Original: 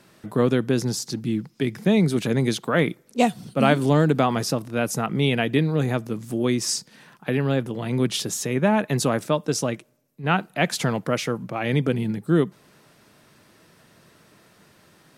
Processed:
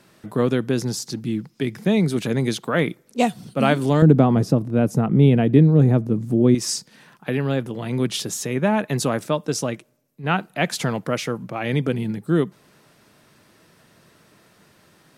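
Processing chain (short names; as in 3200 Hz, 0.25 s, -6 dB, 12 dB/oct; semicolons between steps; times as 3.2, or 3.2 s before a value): 4.02–6.55 tilt shelf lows +10 dB, about 750 Hz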